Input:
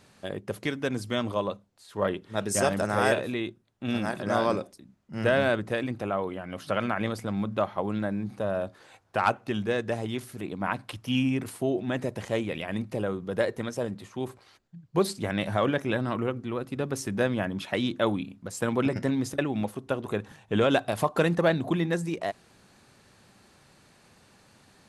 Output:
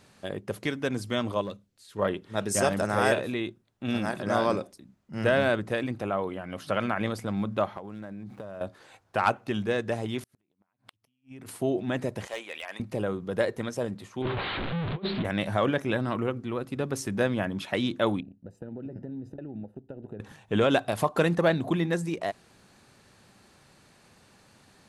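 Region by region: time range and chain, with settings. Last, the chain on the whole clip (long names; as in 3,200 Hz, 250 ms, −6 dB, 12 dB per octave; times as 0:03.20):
0:01.41–0:01.99: parametric band 850 Hz −11.5 dB 1.4 octaves + hard clipping −27.5 dBFS
0:07.77–0:08.61: running median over 9 samples + downward compressor 12 to 1, threshold −35 dBFS
0:10.21–0:11.49: downward compressor 16 to 1, threshold −39 dBFS + gate with flip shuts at −34 dBFS, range −35 dB
0:12.27–0:12.80: high-pass filter 800 Hz + gain into a clipping stage and back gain 28 dB
0:14.22–0:15.25: converter with a step at zero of −27 dBFS + Butterworth low-pass 3,900 Hz 72 dB per octave + compressor whose output falls as the input rises −28 dBFS, ratio −0.5
0:18.20–0:20.20: mu-law and A-law mismatch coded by A + downward compressor, threshold −33 dBFS + moving average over 40 samples
whole clip: no processing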